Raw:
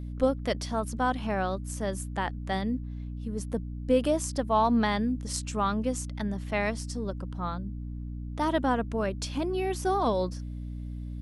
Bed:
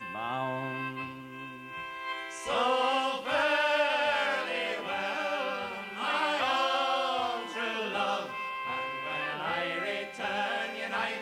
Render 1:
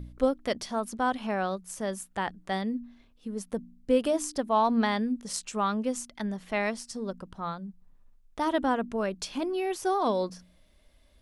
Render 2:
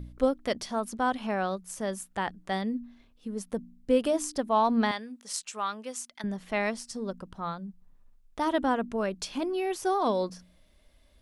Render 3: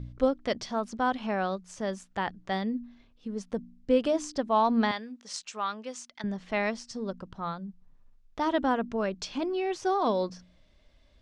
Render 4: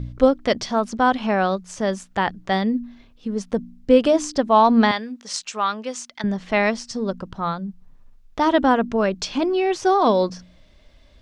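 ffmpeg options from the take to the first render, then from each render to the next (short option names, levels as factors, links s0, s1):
-af "bandreject=f=60:t=h:w=4,bandreject=f=120:t=h:w=4,bandreject=f=180:t=h:w=4,bandreject=f=240:t=h:w=4,bandreject=f=300:t=h:w=4"
-filter_complex "[0:a]asettb=1/sr,asplit=3[s0][s1][s2];[s0]atrim=end=4.914[s3];[s1]atrim=start=4.91:end=6.24,asetpts=PTS-STARTPTS,afade=t=in:d=0.004:c=qsin,afade=t=out:st=1.326:d=0.004:c=qsin,highpass=f=1100:p=1[s4];[s2]atrim=start=6.236[s5];[s3][s4]acrossfade=d=0.004:c1=hsin:c2=qsin[s6];[s6][s5]acrossfade=d=0.004:c1=qsin:c2=hsin"
-af "lowpass=f=6600:w=0.5412,lowpass=f=6600:w=1.3066,equalizer=f=120:w=4.8:g=6.5"
-af "volume=2.99"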